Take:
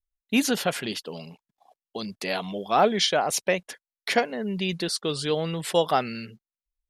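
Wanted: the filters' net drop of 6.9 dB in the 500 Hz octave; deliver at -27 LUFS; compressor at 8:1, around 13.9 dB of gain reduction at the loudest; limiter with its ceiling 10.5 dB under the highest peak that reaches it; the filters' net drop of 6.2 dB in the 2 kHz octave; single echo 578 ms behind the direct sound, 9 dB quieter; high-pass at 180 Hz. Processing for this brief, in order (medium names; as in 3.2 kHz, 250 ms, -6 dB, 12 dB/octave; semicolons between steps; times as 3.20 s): high-pass 180 Hz; peaking EQ 500 Hz -8 dB; peaking EQ 2 kHz -8 dB; compression 8:1, threshold -35 dBFS; peak limiter -29.5 dBFS; delay 578 ms -9 dB; trim +14 dB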